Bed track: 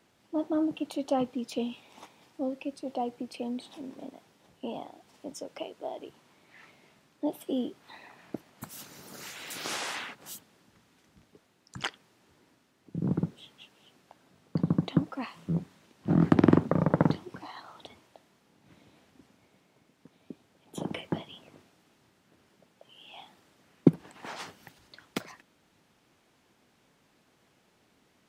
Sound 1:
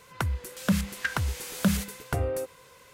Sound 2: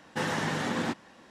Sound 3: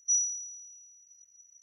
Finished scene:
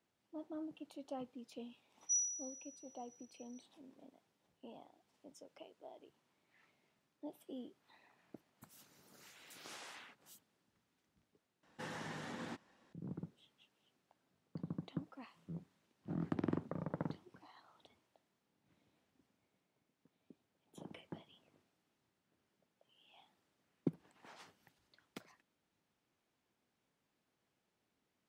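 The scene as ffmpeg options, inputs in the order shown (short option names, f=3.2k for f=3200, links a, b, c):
-filter_complex "[0:a]volume=-17.5dB,asplit=2[a][b];[a]atrim=end=11.634[c];[2:a]atrim=end=1.3,asetpts=PTS-STARTPTS,volume=-16dB[d];[b]atrim=start=12.926[e];[3:a]atrim=end=1.62,asetpts=PTS-STARTPTS,volume=-8.5dB,afade=t=in:d=0.004:c=hsin,afade=t=out:st=1.616:d=0.004:c=hsin,adelay=2010[f];[c][d]acrossfade=d=0.004:c1=hsin:c2=hsin[g];[g][e]acrossfade=d=0.004:c1=hsin:c2=hsin[h];[h][f]amix=inputs=2:normalize=0"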